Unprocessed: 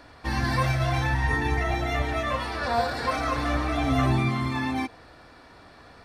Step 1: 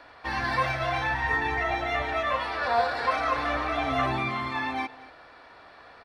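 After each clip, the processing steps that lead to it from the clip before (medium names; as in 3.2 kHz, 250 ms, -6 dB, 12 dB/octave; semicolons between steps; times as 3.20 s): three-band isolator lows -13 dB, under 440 Hz, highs -14 dB, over 4.2 kHz; delay 233 ms -20 dB; trim +2 dB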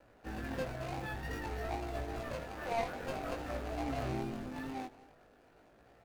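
median filter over 41 samples; chorus 0.5 Hz, delay 17.5 ms, depth 3.1 ms; vibrato 2.4 Hz 40 cents; trim -2 dB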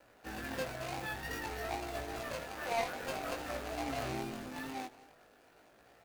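tilt EQ +2 dB/octave; trim +1.5 dB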